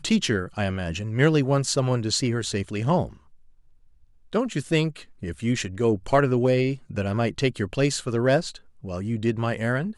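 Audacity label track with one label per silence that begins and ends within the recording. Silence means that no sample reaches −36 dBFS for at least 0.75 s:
3.130000	4.330000	silence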